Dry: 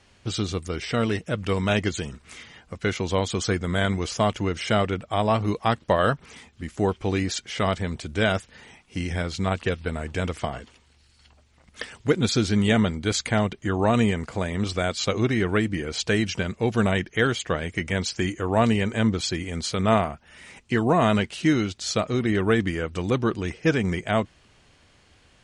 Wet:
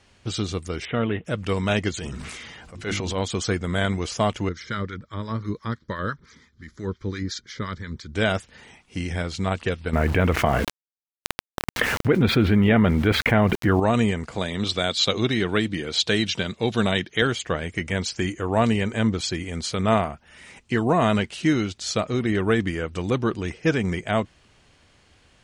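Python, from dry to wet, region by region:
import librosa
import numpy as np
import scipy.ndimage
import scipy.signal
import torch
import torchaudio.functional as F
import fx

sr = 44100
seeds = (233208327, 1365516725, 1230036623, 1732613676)

y = fx.chain(x, sr, fx.highpass(hz=54.0, slope=12),
    fx.air_absorb(metres=170.0),
    fx.resample_bad(factor=6, down='none', up='filtered'), at=(0.85, 1.25))
y = fx.chain(y, sr, fx.hum_notches(base_hz=50, count=7),
    fx.transient(attack_db=-9, sustain_db=6),
    fx.sustainer(db_per_s=24.0), at=(1.94, 3.23))
y = fx.chain(y, sr, fx.harmonic_tremolo(hz=5.8, depth_pct=70, crossover_hz=910.0),
    fx.fixed_phaser(hz=2700.0, stages=6), at=(4.49, 8.15))
y = fx.chain(y, sr, fx.lowpass(hz=2600.0, slope=24),
    fx.sample_gate(floor_db=-46.5),
    fx.env_flatten(amount_pct=70), at=(9.93, 13.8))
y = fx.chain(y, sr, fx.highpass(hz=99.0, slope=12),
    fx.peak_eq(hz=3700.0, db=12.5, octaves=0.44), at=(14.36, 17.22))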